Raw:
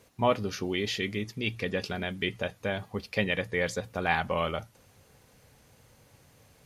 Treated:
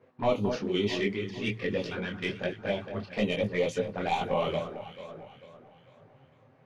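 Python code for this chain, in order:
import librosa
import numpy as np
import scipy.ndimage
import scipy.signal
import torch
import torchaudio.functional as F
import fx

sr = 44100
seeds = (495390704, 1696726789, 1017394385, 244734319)

p1 = scipy.signal.sosfilt(scipy.signal.bessel(2, 160.0, 'highpass', norm='mag', fs=sr, output='sos'), x)
p2 = fx.env_lowpass(p1, sr, base_hz=1700.0, full_db=-24.0)
p3 = fx.high_shelf(p2, sr, hz=3000.0, db=-7.5)
p4 = 10.0 ** (-21.0 / 20.0) * np.tanh(p3 / 10.0 ** (-21.0 / 20.0))
p5 = fx.env_flanger(p4, sr, rest_ms=8.5, full_db=-28.5)
p6 = p5 + fx.echo_alternate(p5, sr, ms=223, hz=1500.0, feedback_pct=65, wet_db=-8.0, dry=0)
p7 = fx.detune_double(p6, sr, cents=40)
y = F.gain(torch.from_numpy(p7), 8.5).numpy()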